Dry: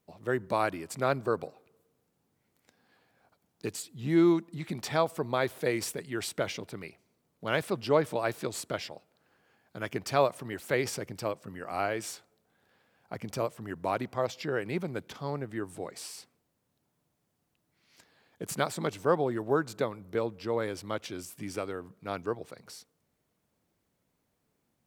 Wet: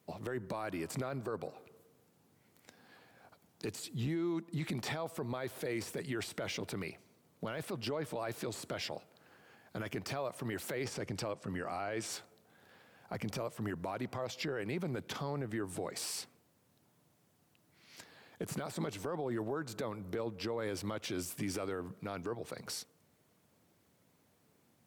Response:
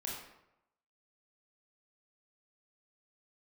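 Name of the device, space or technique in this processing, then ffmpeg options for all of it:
podcast mastering chain: -filter_complex "[0:a]asettb=1/sr,asplit=3[link_01][link_02][link_03];[link_01]atrim=end=10.844[link_04];[link_02]atrim=start=10.84:end=12.13,asetpts=PTS-STARTPTS,afade=type=in:duration=0.004:curve=qsin,afade=type=out:start_time=1.286:duration=0.004:curve=qsin,lowpass=9500[link_05];[link_03]atrim=start=12.126[link_06];[link_04][link_05]acrossfade=duration=0.004:curve1=hsin:curve2=qsin[link_07];[link_07][link_06]acrossfade=duration=0.004:curve1=qsin:curve2=hsin,highpass=frequency=72:width=0.5412,highpass=frequency=72:width=1.3066,deesser=1,acompressor=threshold=-39dB:ratio=2.5,alimiter=level_in=11.5dB:limit=-24dB:level=0:latency=1:release=12,volume=-11.5dB,volume=7dB" -ar 44100 -c:a libmp3lame -b:a 112k

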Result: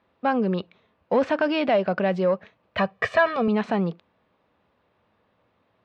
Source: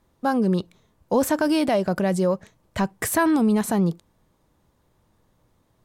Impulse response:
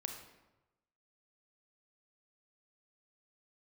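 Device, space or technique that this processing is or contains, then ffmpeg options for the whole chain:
overdrive pedal into a guitar cabinet: -filter_complex "[0:a]asplit=2[link_01][link_02];[link_02]highpass=frequency=720:poles=1,volume=9dB,asoftclip=type=tanh:threshold=-10dB[link_03];[link_01][link_03]amix=inputs=2:normalize=0,lowpass=frequency=1500:poles=1,volume=-6dB,highpass=96,equalizer=frequency=140:width_type=q:width=4:gain=-9,equalizer=frequency=330:width_type=q:width=4:gain=-6,equalizer=frequency=920:width_type=q:width=4:gain=-4,equalizer=frequency=2600:width_type=q:width=4:gain=6,lowpass=frequency=4400:width=0.5412,lowpass=frequency=4400:width=1.3066,asettb=1/sr,asplit=3[link_04][link_05][link_06];[link_04]atrim=end=2.784[link_07];[link_05]atrim=start=2.78:end=3.48,asetpts=PTS-STARTPTS,afade=type=in:duration=0.004:curve=qsin,afade=type=out:start_time=0.696:duration=0.004:curve=qsin,aecho=1:1:1.7:0.91,atrim=end_sample=30870[link_08];[link_06]atrim=start=3.476[link_09];[link_07][link_08]acrossfade=duration=0.004:curve1=hsin:curve2=qsin[link_10];[link_10][link_09]acrossfade=duration=0.004:curve1=qsin:curve2=hsin,volume=1.5dB"

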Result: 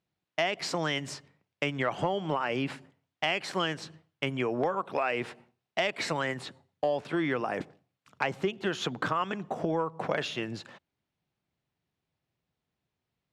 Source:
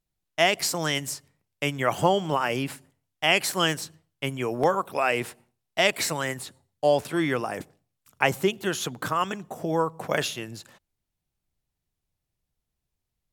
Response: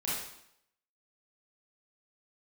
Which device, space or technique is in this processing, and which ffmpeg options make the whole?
AM radio: -af "highpass=130,lowpass=3600,acompressor=threshold=-31dB:ratio=4,asoftclip=type=tanh:threshold=-18dB,volume=4.5dB"

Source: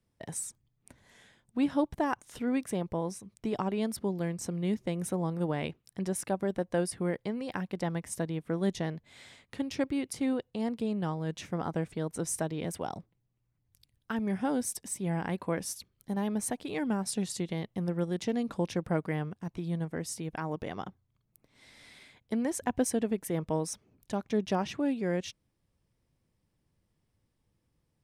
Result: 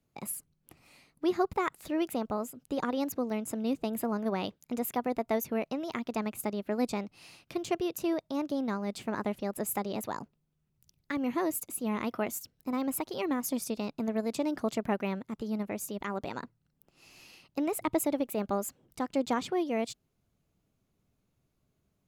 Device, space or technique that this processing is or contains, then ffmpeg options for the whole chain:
nightcore: -af "asetrate=56007,aresample=44100"

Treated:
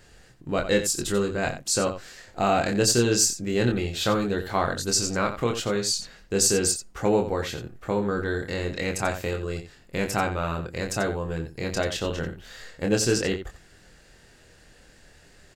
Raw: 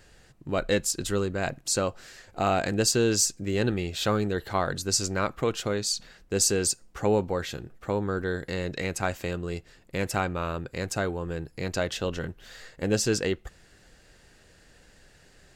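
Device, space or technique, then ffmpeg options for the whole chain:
slapback doubling: -filter_complex "[0:a]asplit=3[link_01][link_02][link_03];[link_02]adelay=25,volume=-4.5dB[link_04];[link_03]adelay=89,volume=-10.5dB[link_05];[link_01][link_04][link_05]amix=inputs=3:normalize=0,volume=1dB"

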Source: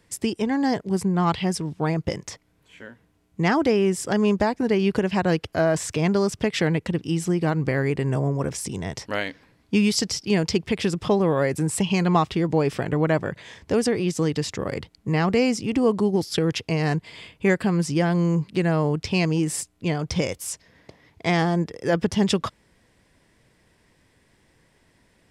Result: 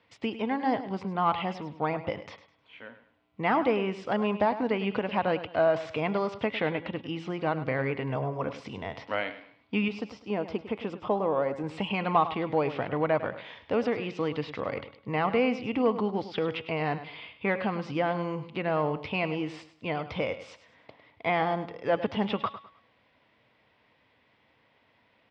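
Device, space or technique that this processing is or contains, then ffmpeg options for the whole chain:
overdrive pedal into a guitar cabinet: -filter_complex "[0:a]asplit=2[link_01][link_02];[link_02]highpass=frequency=720:poles=1,volume=8dB,asoftclip=type=tanh:threshold=-7.5dB[link_03];[link_01][link_03]amix=inputs=2:normalize=0,lowpass=frequency=4300:poles=1,volume=-6dB,highpass=100,equalizer=frequency=170:width_type=q:width=4:gain=-8,equalizer=frequency=370:width_type=q:width=4:gain=-9,equalizer=frequency=1700:width_type=q:width=4:gain=-8,lowpass=frequency=3600:width=0.5412,lowpass=frequency=3600:width=1.3066,bandreject=frequency=279.1:width_type=h:width=4,bandreject=frequency=558.2:width_type=h:width=4,bandreject=frequency=837.3:width_type=h:width=4,bandreject=frequency=1116.4:width_type=h:width=4,bandreject=frequency=1395.5:width_type=h:width=4,bandreject=frequency=1674.6:width_type=h:width=4,bandreject=frequency=1953.7:width_type=h:width=4,bandreject=frequency=2232.8:width_type=h:width=4,bandreject=frequency=2511.9:width_type=h:width=4,bandreject=frequency=2791:width_type=h:width=4,bandreject=frequency=3070.1:width_type=h:width=4,bandreject=frequency=3349.2:width_type=h:width=4,bandreject=frequency=3628.3:width_type=h:width=4,bandreject=frequency=3907.4:width_type=h:width=4,acrossover=split=2900[link_04][link_05];[link_05]acompressor=threshold=-47dB:ratio=4:attack=1:release=60[link_06];[link_04][link_06]amix=inputs=2:normalize=0,asettb=1/sr,asplit=3[link_07][link_08][link_09];[link_07]atrim=end=9.884[link_10];[link_08]atrim=start=9.88:end=11.64,asetpts=PTS-STARTPTS,afade=type=in:duration=0.004:curve=qsin,afade=type=out:start_time=1.756:duration=0.004:curve=qsin,equalizer=frequency=125:width_type=o:width=1:gain=-7,equalizer=frequency=2000:width_type=o:width=1:gain=-8,equalizer=frequency=4000:width_type=o:width=1:gain=-9,equalizer=frequency=8000:width_type=o:width=1:gain=4[link_11];[link_09]atrim=start=11.636[link_12];[link_10][link_11]acrossfade=duration=0.004:curve1=hsin:curve2=qsin[link_13];[link_13][link_12]acrossfade=duration=0.004:curve1=qsin:curve2=hsin,aecho=1:1:103|206|309:0.224|0.0694|0.0215,volume=-2dB"

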